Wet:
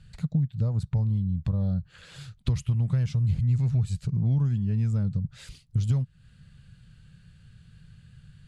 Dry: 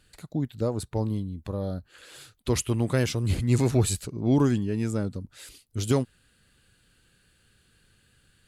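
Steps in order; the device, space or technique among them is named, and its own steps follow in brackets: jukebox (LPF 6500 Hz 12 dB/oct; resonant low shelf 220 Hz +12 dB, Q 3; compressor 6:1, threshold -23 dBFS, peak gain reduction 19 dB)

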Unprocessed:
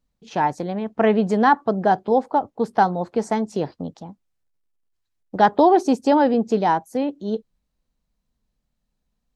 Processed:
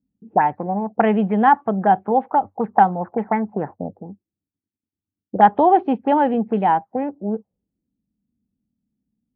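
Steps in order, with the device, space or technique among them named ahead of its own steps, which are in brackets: envelope filter bass rig (envelope low-pass 280–3100 Hz up, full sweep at -16 dBFS; speaker cabinet 76–2200 Hz, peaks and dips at 96 Hz +10 dB, 200 Hz +6 dB, 800 Hz +7 dB); gain -3 dB

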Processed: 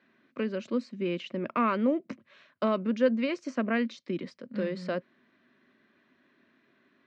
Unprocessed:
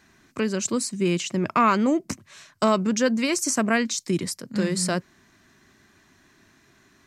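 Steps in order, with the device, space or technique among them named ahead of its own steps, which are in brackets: kitchen radio (speaker cabinet 210–3500 Hz, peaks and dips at 240 Hz +7 dB, 540 Hz +9 dB, 810 Hz -6 dB); gain -8 dB

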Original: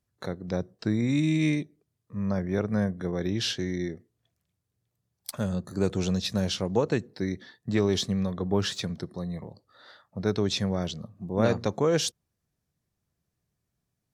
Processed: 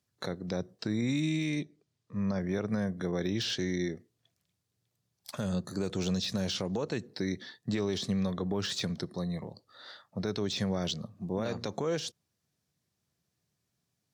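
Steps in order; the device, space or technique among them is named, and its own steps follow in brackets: broadcast voice chain (HPF 99 Hz 12 dB/oct; de-esser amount 90%; compressor 4:1, threshold -26 dBFS, peak gain reduction 7.5 dB; bell 4600 Hz +6 dB 1.8 oct; limiter -22 dBFS, peak gain reduction 7.5 dB); 1.59–2.4 LPF 7400 Hz

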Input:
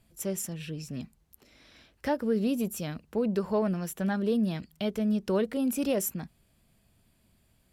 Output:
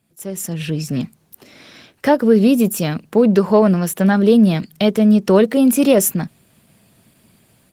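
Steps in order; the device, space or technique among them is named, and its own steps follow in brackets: video call (HPF 110 Hz 24 dB/oct; AGC gain up to 14.5 dB; gain +2 dB; Opus 20 kbps 48000 Hz)

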